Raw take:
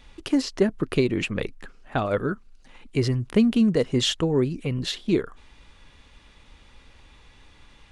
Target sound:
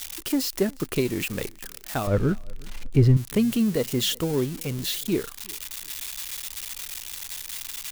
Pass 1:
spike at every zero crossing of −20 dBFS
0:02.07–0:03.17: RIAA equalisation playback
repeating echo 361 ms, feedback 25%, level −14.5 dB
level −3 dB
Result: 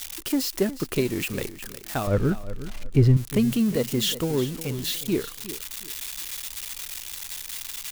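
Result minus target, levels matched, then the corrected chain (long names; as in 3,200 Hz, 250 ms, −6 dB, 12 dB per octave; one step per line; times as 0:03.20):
echo-to-direct +11.5 dB
spike at every zero crossing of −20 dBFS
0:02.07–0:03.17: RIAA equalisation playback
repeating echo 361 ms, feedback 25%, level −26 dB
level −3 dB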